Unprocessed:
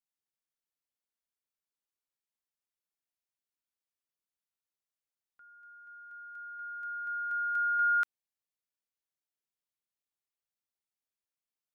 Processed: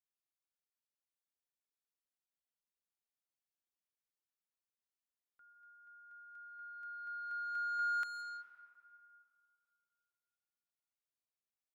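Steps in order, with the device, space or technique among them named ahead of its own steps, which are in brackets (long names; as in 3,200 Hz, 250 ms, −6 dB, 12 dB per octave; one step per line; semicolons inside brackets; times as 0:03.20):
saturated reverb return (on a send at −6 dB: convolution reverb RT60 2.5 s, pre-delay 117 ms + soft clipping −30 dBFS, distortion −10 dB)
on the sum: level −7.5 dB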